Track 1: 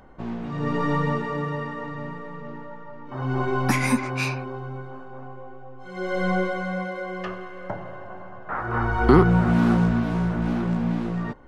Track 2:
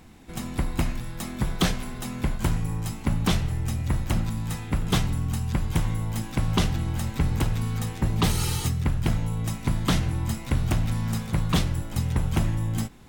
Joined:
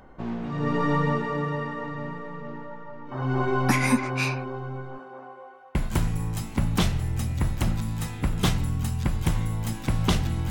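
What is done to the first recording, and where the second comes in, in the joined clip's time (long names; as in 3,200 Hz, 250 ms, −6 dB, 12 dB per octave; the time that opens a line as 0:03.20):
track 1
0:04.97–0:05.75: high-pass filter 200 Hz → 1,000 Hz
0:05.75: continue with track 2 from 0:02.24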